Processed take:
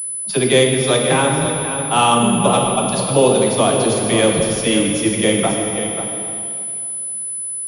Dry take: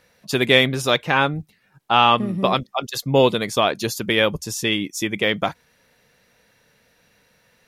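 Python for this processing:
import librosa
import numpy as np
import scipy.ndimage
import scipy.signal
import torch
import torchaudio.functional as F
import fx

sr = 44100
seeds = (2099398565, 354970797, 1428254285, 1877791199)

p1 = fx.peak_eq(x, sr, hz=1800.0, db=-9.5, octaves=1.8)
p2 = fx.rider(p1, sr, range_db=10, speed_s=0.5)
p3 = p1 + (p2 * librosa.db_to_amplitude(-0.5))
p4 = fx.dispersion(p3, sr, late='lows', ms=46.0, hz=370.0)
p5 = p4 + fx.echo_single(p4, sr, ms=539, db=-9.0, dry=0)
p6 = fx.rev_plate(p5, sr, seeds[0], rt60_s=2.4, hf_ratio=1.0, predelay_ms=0, drr_db=0.5)
p7 = fx.pwm(p6, sr, carrier_hz=10000.0)
y = p7 * librosa.db_to_amplitude(-1.5)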